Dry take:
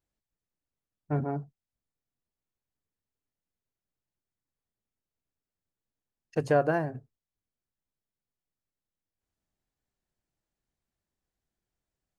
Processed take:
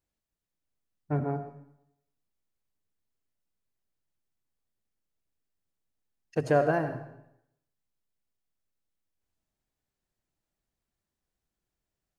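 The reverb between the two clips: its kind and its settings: digital reverb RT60 0.78 s, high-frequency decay 0.95×, pre-delay 40 ms, DRR 8.5 dB

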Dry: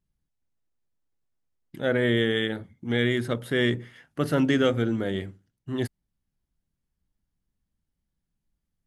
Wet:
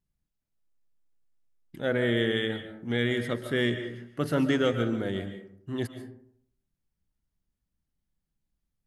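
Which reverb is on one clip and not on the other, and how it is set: digital reverb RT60 0.65 s, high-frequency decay 0.45×, pre-delay 0.1 s, DRR 8.5 dB; gain -3 dB

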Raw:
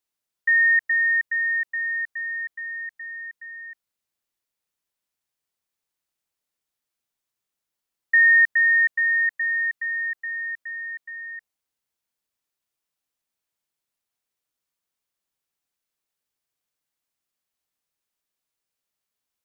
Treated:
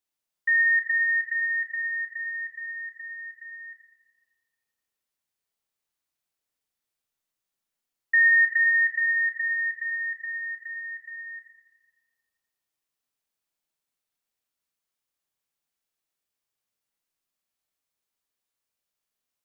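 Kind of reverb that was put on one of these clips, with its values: Schroeder reverb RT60 1.5 s, combs from 28 ms, DRR 2 dB; gain -3.5 dB

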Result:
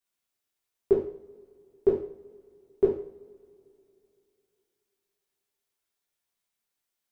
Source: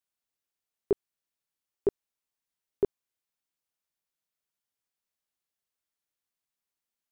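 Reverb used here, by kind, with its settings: two-slope reverb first 0.49 s, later 3 s, from -26 dB, DRR -4.5 dB; gain -1 dB

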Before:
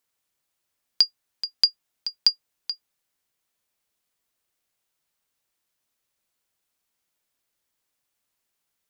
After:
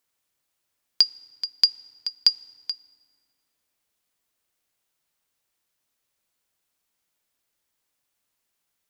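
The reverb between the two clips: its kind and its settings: FDN reverb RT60 2.2 s, low-frequency decay 1.35×, high-frequency decay 0.6×, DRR 19.5 dB; gain +1 dB

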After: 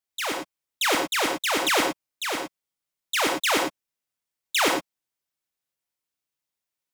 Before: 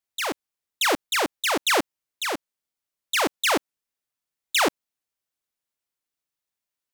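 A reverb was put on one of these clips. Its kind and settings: non-linear reverb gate 0.13 s rising, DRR 2 dB; gain -2 dB

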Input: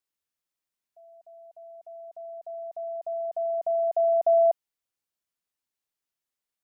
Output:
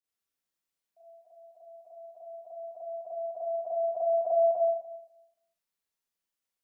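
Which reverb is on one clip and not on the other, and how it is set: Schroeder reverb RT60 0.91 s, combs from 33 ms, DRR -9 dB; gain -9.5 dB

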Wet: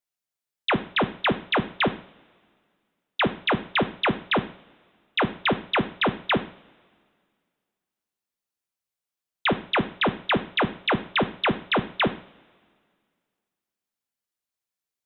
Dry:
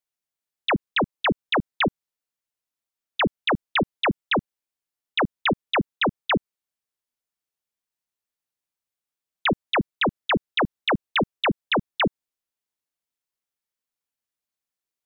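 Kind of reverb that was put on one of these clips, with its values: two-slope reverb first 0.47 s, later 2.1 s, from -22 dB, DRR 8 dB; gain -1 dB

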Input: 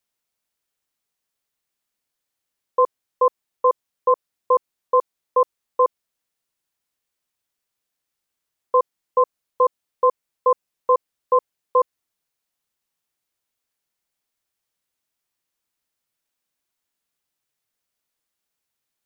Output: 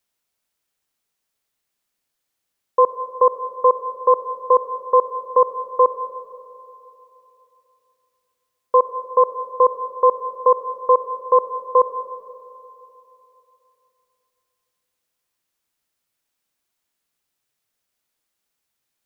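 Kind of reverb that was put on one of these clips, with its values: digital reverb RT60 3 s, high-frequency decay 0.9×, pre-delay 25 ms, DRR 11 dB; gain +3 dB

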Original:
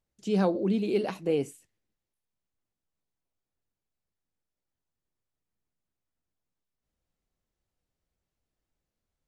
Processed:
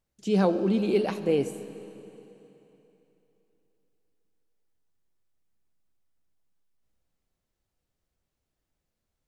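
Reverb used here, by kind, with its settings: digital reverb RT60 3.3 s, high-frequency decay 0.95×, pre-delay 25 ms, DRR 12 dB; gain +2.5 dB

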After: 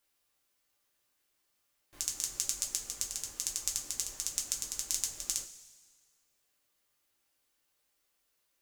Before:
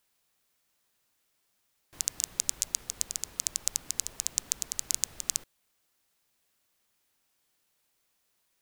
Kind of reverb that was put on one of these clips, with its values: two-slope reverb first 0.21 s, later 1.6 s, from -18 dB, DRR -1 dB; gain -6 dB

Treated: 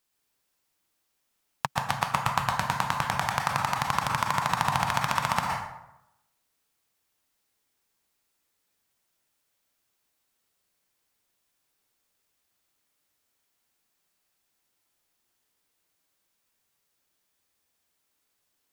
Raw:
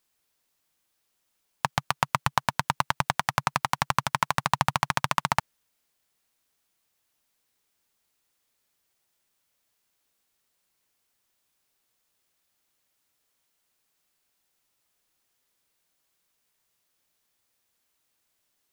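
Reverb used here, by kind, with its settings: plate-style reverb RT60 0.87 s, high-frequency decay 0.6×, pre-delay 0.105 s, DRR 0.5 dB; gain -3 dB

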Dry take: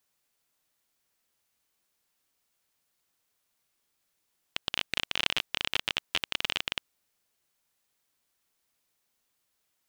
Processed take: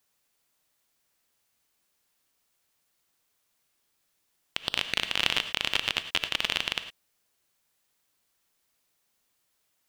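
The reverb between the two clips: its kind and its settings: non-linear reverb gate 0.13 s rising, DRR 10 dB; gain +2.5 dB

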